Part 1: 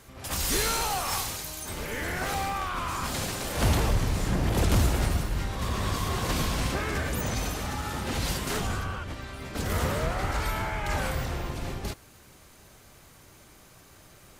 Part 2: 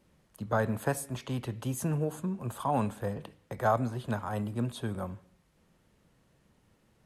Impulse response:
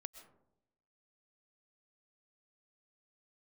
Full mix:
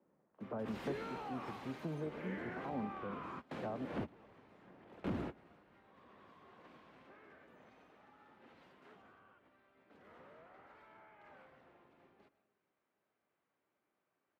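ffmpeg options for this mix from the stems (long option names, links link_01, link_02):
-filter_complex "[0:a]highshelf=frequency=5300:gain=-9,adelay=350,volume=-4.5dB,asplit=2[link_01][link_02];[link_02]volume=-22dB[link_03];[1:a]lowpass=1100,acontrast=45,volume=-9.5dB,asplit=3[link_04][link_05][link_06];[link_04]atrim=end=3.85,asetpts=PTS-STARTPTS,afade=type=out:start_time=3.846:duration=0.004:curve=hsin[link_07];[link_05]atrim=start=3.85:end=5.04,asetpts=PTS-STARTPTS,volume=0[link_08];[link_06]atrim=start=5.04,asetpts=PTS-STARTPTS,afade=type=in:duration=0.004:curve=hsin[link_09];[link_07][link_08][link_09]concat=n=3:v=0:a=1,asplit=2[link_10][link_11];[link_11]apad=whole_len=650462[link_12];[link_01][link_12]sidechaingate=range=-32dB:threshold=-59dB:ratio=16:detection=peak[link_13];[2:a]atrim=start_sample=2205[link_14];[link_03][link_14]afir=irnorm=-1:irlink=0[link_15];[link_13][link_10][link_15]amix=inputs=3:normalize=0,highpass=64,acrossover=split=200 3100:gain=0.0794 1 0.0891[link_16][link_17][link_18];[link_16][link_17][link_18]amix=inputs=3:normalize=0,acrossover=split=360[link_19][link_20];[link_20]acompressor=threshold=-49dB:ratio=3[link_21];[link_19][link_21]amix=inputs=2:normalize=0"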